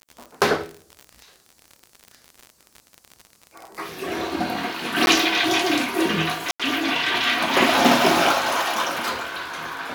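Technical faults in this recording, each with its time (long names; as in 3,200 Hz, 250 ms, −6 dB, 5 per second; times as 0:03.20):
surface crackle 59 per second −29 dBFS
0:05.06–0:05.07: drop-out 11 ms
0:06.51–0:06.60: drop-out 86 ms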